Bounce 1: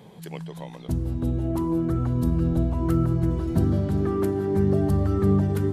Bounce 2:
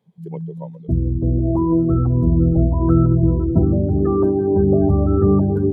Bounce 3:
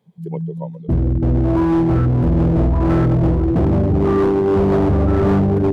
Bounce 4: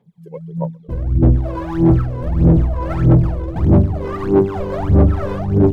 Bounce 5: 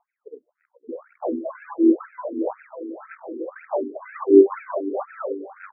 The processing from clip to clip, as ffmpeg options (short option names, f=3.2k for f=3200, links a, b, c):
-af "bandreject=f=50:t=h:w=6,bandreject=f=100:t=h:w=6,bandreject=f=150:t=h:w=6,bandreject=f=200:t=h:w=6,bandreject=f=250:t=h:w=6,afftdn=nr=31:nf=-30,volume=8dB"
-af "asoftclip=type=hard:threshold=-16dB,volume=4dB"
-af "aphaser=in_gain=1:out_gain=1:delay=2:decay=0.8:speed=1.6:type=sinusoidal,volume=-7.5dB"
-af "tremolo=f=0.88:d=0.46,afftfilt=real='re*between(b*sr/1024,320*pow(1900/320,0.5+0.5*sin(2*PI*2*pts/sr))/1.41,320*pow(1900/320,0.5+0.5*sin(2*PI*2*pts/sr))*1.41)':imag='im*between(b*sr/1024,320*pow(1900/320,0.5+0.5*sin(2*PI*2*pts/sr))/1.41,320*pow(1900/320,0.5+0.5*sin(2*PI*2*pts/sr))*1.41)':win_size=1024:overlap=0.75,volume=3.5dB"